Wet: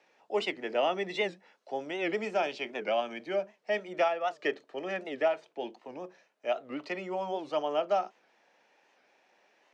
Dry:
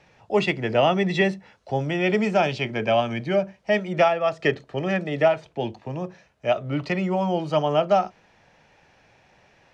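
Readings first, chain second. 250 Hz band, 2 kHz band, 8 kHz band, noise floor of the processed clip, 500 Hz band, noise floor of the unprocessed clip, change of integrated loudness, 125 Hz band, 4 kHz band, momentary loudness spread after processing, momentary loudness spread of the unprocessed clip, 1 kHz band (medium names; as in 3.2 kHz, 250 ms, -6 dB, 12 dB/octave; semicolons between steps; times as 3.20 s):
-14.0 dB, -8.5 dB, no reading, -69 dBFS, -8.5 dB, -59 dBFS, -9.0 dB, under -20 dB, -7.5 dB, 10 LU, 11 LU, -8.5 dB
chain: high-pass 270 Hz 24 dB/octave; warped record 78 rpm, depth 160 cents; trim -8.5 dB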